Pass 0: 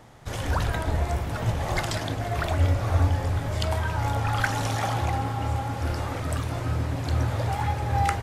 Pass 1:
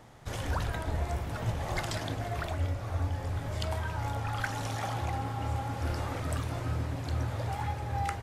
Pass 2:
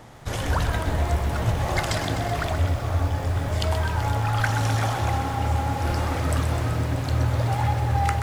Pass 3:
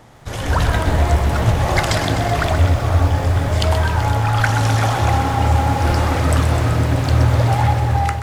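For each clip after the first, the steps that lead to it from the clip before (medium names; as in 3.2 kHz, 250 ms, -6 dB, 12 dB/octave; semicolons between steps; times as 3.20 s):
gain riding within 4 dB 0.5 s; trim -7 dB
bit-crushed delay 127 ms, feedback 80%, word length 9-bit, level -10 dB; trim +8 dB
level rider gain up to 9 dB; loudspeaker Doppler distortion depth 0.13 ms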